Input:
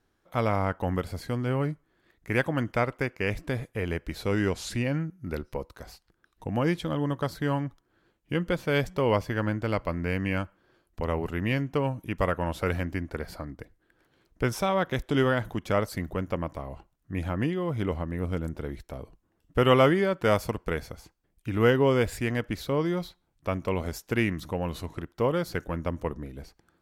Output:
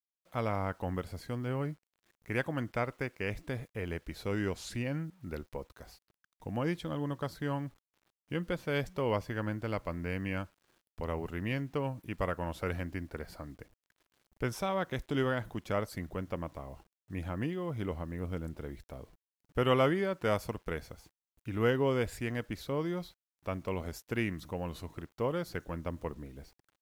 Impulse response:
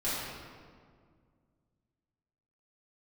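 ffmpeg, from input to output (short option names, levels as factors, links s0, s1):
-af "acrusher=bits=9:mix=0:aa=0.000001,volume=0.447"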